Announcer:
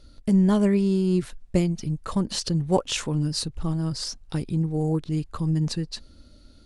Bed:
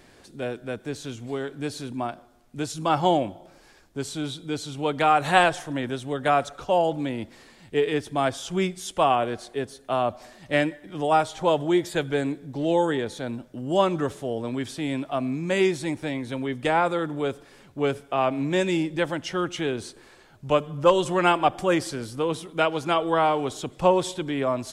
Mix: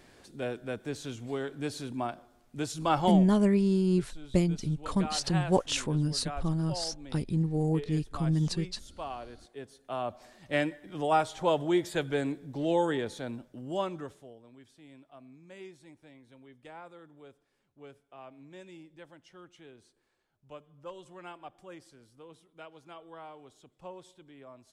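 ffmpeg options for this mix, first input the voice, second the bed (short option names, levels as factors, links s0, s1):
-filter_complex "[0:a]adelay=2800,volume=0.668[s0];[1:a]volume=2.99,afade=t=out:st=3:d=0.29:silence=0.188365,afade=t=in:st=9.35:d=1.46:silence=0.211349,afade=t=out:st=13.07:d=1.32:silence=0.0944061[s1];[s0][s1]amix=inputs=2:normalize=0"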